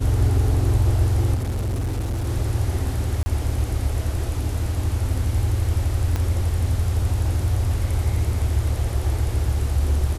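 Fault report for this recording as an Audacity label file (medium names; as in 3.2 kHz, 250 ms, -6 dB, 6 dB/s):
1.340000	2.270000	clipped -21 dBFS
3.230000	3.260000	dropout 30 ms
6.160000	6.160000	pop -12 dBFS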